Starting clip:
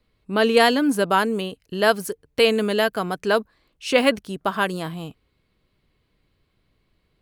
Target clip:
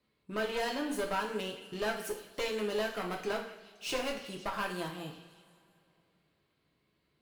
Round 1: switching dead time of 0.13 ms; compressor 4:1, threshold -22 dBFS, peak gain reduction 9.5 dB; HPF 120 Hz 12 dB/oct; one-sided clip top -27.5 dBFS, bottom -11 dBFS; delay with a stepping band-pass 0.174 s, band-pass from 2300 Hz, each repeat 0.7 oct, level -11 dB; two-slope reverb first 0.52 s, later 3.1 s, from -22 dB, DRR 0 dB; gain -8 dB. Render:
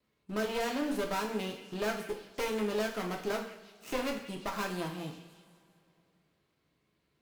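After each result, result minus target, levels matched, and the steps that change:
switching dead time: distortion +18 dB; 250 Hz band +3.0 dB
change: switching dead time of 0.024 ms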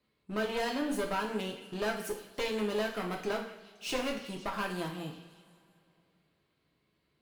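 250 Hz band +2.5 dB
add after HPF: dynamic EQ 220 Hz, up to -6 dB, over -43 dBFS, Q 1.4

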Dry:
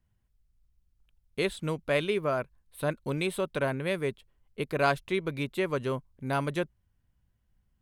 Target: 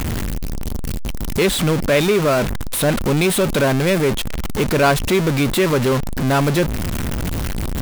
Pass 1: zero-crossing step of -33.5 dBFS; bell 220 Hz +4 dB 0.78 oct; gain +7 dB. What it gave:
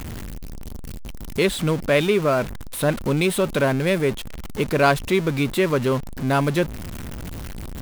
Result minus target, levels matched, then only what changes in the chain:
zero-crossing step: distortion -7 dB
change: zero-crossing step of -23 dBFS

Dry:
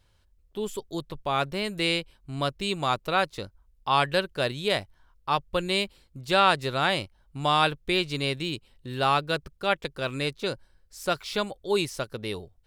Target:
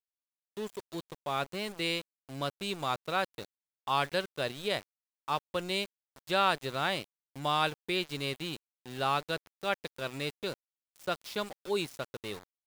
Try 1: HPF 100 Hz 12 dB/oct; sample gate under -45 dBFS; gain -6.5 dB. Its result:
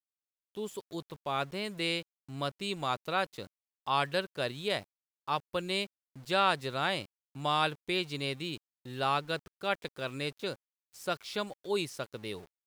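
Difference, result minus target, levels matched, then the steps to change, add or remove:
sample gate: distortion -12 dB
change: sample gate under -35 dBFS

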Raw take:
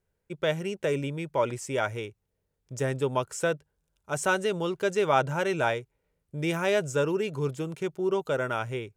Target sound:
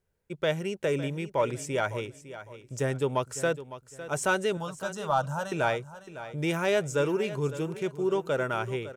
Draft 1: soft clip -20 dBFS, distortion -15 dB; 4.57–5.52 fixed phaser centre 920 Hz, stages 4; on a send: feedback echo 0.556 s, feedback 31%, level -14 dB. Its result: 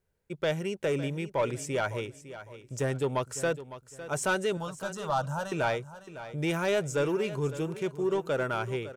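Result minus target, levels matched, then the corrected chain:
soft clip: distortion +11 dB
soft clip -12 dBFS, distortion -26 dB; 4.57–5.52 fixed phaser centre 920 Hz, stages 4; on a send: feedback echo 0.556 s, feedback 31%, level -14 dB

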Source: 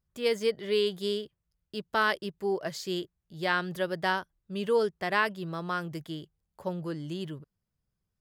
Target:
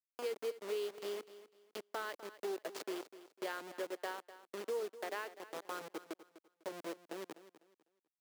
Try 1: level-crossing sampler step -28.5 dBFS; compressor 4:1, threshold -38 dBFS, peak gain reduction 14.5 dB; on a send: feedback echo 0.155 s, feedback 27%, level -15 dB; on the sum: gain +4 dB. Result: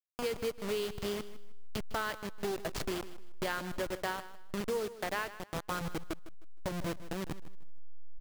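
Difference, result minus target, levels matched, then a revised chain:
echo 95 ms early; 250 Hz band +4.0 dB
level-crossing sampler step -28.5 dBFS; compressor 4:1, threshold -38 dBFS, peak gain reduction 14.5 dB; ladder high-pass 300 Hz, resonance 35%; on a send: feedback echo 0.25 s, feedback 27%, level -15 dB; on the sum: gain +4 dB

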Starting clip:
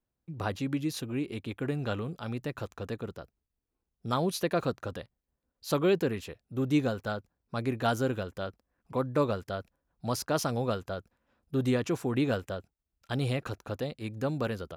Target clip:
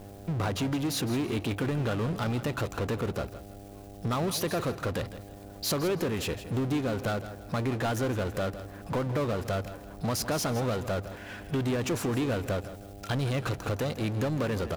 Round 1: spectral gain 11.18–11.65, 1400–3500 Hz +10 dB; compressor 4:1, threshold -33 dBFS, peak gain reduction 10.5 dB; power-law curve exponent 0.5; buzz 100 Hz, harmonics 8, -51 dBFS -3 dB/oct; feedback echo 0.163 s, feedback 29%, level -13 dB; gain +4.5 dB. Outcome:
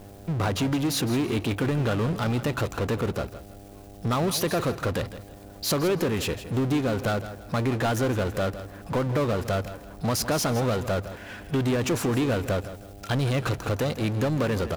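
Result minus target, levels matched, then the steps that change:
compressor: peak gain reduction -4.5 dB
change: compressor 4:1, threshold -39 dBFS, peak gain reduction 15 dB

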